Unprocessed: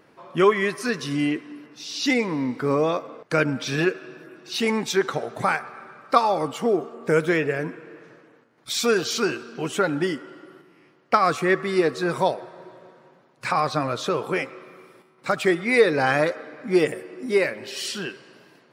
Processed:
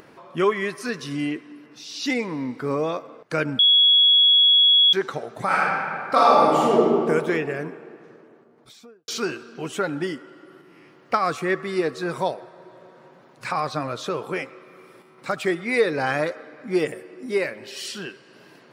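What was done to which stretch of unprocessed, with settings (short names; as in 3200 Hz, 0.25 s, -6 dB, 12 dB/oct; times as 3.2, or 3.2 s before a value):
3.59–4.93 bleep 3350 Hz -9 dBFS
5.46–7 reverb throw, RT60 2.2 s, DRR -7.5 dB
7.76–9.08 studio fade out
whole clip: upward compressor, threshold -37 dBFS; gain -3 dB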